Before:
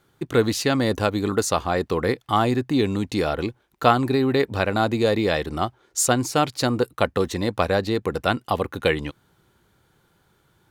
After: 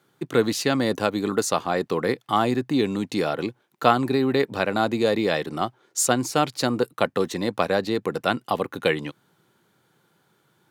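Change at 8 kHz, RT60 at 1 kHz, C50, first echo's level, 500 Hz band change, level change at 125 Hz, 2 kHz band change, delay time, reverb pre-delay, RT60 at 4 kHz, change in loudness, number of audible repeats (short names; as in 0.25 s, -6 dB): -1.0 dB, none, none, none, -1.0 dB, -5.0 dB, -1.0 dB, none, none, none, -1.0 dB, none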